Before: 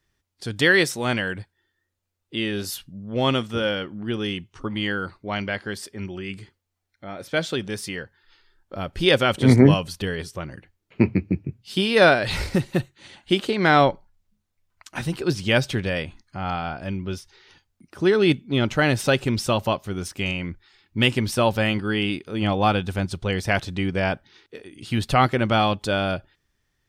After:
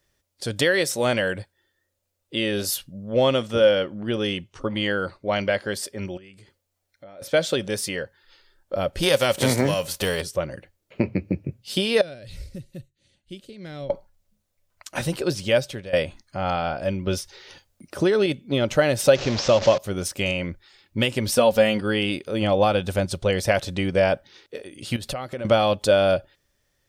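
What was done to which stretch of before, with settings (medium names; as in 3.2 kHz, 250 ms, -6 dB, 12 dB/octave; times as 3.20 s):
3.15–5.34 s: treble shelf 11 kHz -9 dB
6.17–7.22 s: compression 5:1, threshold -48 dBFS
9.02–10.20 s: formants flattened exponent 0.6
12.01–13.90 s: amplifier tone stack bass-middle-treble 10-0-1
15.12–15.93 s: fade out, to -18 dB
17.07–18.26 s: gain +4.5 dB
19.15–19.78 s: one-bit delta coder 32 kbps, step -24.5 dBFS
21.36–21.81 s: comb 4.2 ms, depth 57%
24.96–25.45 s: compression 12:1, threshold -30 dBFS
whole clip: treble shelf 4.3 kHz +8 dB; compression 6:1, threshold -19 dBFS; peaking EQ 560 Hz +13 dB 0.44 oct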